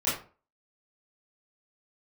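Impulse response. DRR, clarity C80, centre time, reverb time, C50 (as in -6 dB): -12.0 dB, 10.0 dB, 42 ms, 0.40 s, 4.5 dB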